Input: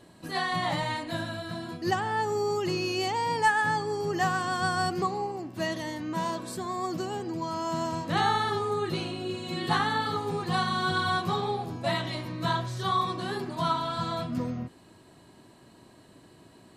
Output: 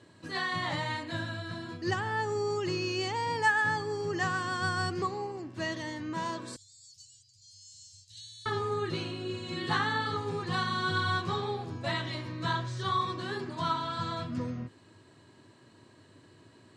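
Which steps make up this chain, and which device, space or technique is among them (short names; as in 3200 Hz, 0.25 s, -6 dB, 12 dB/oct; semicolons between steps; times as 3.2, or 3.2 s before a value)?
car door speaker (speaker cabinet 100–8100 Hz, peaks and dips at 100 Hz +10 dB, 190 Hz -6 dB, 730 Hz -7 dB, 1700 Hz +3 dB); 6.56–8.46 inverse Chebyshev band-stop 270–1100 Hz, stop band 80 dB; gain -2.5 dB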